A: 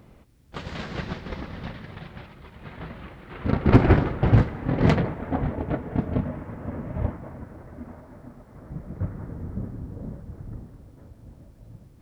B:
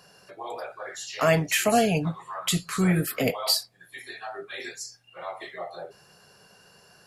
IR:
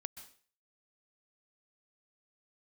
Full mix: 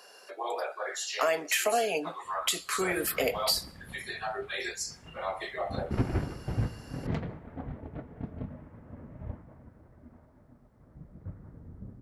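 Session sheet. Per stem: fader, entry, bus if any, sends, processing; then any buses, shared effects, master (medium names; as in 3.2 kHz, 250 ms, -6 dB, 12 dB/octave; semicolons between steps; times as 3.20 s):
-17.0 dB, 2.25 s, send -11 dB, none
+1.0 dB, 0.00 s, send -14.5 dB, high-pass 350 Hz 24 dB/octave; compression 3:1, threshold -28 dBFS, peak gain reduction 9 dB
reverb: on, RT60 0.45 s, pre-delay 118 ms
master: bass shelf 220 Hz +3.5 dB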